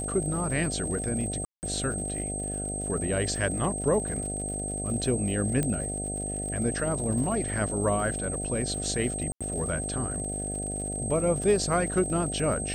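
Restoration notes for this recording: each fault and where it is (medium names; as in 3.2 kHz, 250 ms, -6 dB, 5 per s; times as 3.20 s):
buzz 50 Hz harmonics 15 -35 dBFS
crackle 78 per s -37 dBFS
whine 8.3 kHz -33 dBFS
1.45–1.63 s: dropout 179 ms
5.63 s: pop -15 dBFS
9.32–9.41 s: dropout 86 ms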